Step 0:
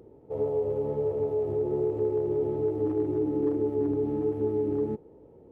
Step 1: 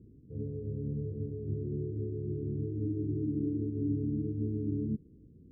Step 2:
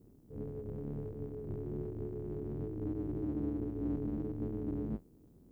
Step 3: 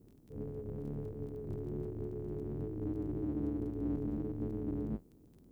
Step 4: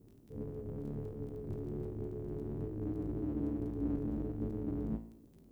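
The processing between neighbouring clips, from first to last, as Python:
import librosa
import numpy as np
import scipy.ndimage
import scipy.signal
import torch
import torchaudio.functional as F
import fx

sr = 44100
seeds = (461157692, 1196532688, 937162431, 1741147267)

y1 = scipy.signal.sosfilt(scipy.signal.cheby2(4, 70, 1100.0, 'lowpass', fs=sr, output='sos'), x)
y1 = F.gain(torch.from_numpy(y1), 4.0).numpy()
y2 = fx.octave_divider(y1, sr, octaves=2, level_db=1.0)
y2 = fx.tilt_eq(y2, sr, slope=3.5)
y2 = F.gain(torch.from_numpy(y2), 2.5).numpy()
y3 = fx.dmg_crackle(y2, sr, seeds[0], per_s=12.0, level_db=-51.0)
y4 = fx.comb_fb(y3, sr, f0_hz=56.0, decay_s=0.64, harmonics='all', damping=0.0, mix_pct=70)
y4 = F.gain(torch.from_numpy(y4), 7.5).numpy()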